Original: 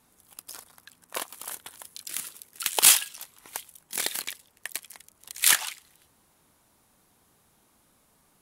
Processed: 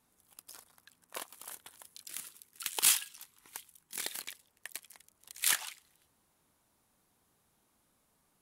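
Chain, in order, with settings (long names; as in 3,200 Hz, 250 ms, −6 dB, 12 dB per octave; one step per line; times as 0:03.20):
0:02.28–0:04.04: parametric band 620 Hz −10.5 dB 0.52 octaves
level −9 dB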